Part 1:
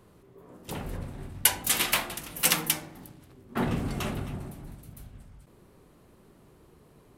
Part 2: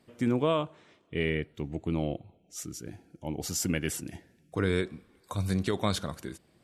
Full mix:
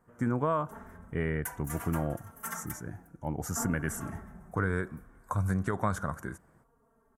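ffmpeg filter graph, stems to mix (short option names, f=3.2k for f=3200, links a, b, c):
-filter_complex "[0:a]equalizer=f=600:w=1.5:g=3.5,aecho=1:1:4.4:0.88,asplit=2[a][b];[b]adelay=3.6,afreqshift=-0.63[c];[a][c]amix=inputs=2:normalize=1,volume=-10dB[d];[1:a]dynaudnorm=f=110:g=3:m=7.5dB,volume=-3.5dB[e];[d][e]amix=inputs=2:normalize=0,firequalizer=gain_entry='entry(120,0);entry(330,-7);entry(930,2);entry(1500,5);entry(2500,-17);entry(4200,-24);entry(6200,-7);entry(13000,-5)':delay=0.05:min_phase=1,acompressor=threshold=-26dB:ratio=2.5"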